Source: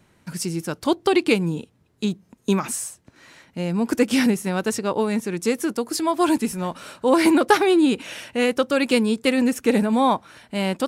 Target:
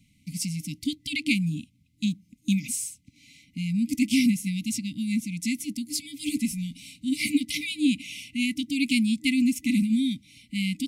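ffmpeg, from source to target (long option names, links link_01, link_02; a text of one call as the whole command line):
ffmpeg -i in.wav -af "afftfilt=real='re*(1-between(b*sr/4096,310,2000))':imag='im*(1-between(b*sr/4096,310,2000))':win_size=4096:overlap=0.75,volume=-2dB" out.wav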